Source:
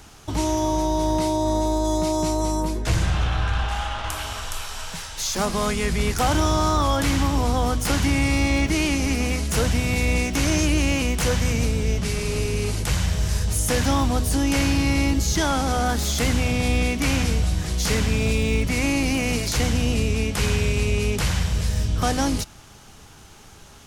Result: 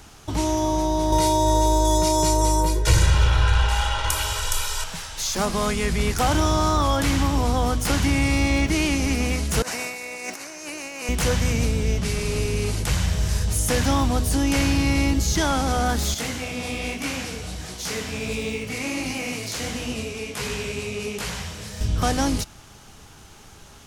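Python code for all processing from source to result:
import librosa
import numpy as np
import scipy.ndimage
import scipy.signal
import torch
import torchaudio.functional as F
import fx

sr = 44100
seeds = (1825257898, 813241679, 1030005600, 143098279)

y = fx.chain(x, sr, fx.high_shelf(hz=4200.0, db=6.5),
    fx.comb(ms=2.1, depth=0.99), at=(1.12, 4.84))
y = fx.chain(y, sr, fx.highpass(hz=540.0, slope=12),
    fx.peak_eq(hz=3300.0, db=-12.5, octaves=0.33),
    fx.over_compress(threshold_db=-32.0, ratio=-0.5), at=(9.62, 11.09))
y = fx.chain(y, sr, fx.highpass(hz=270.0, slope=6),
    fx.echo_feedback(ms=82, feedback_pct=60, wet_db=-13),
    fx.detune_double(cents=47), at=(16.14, 21.81))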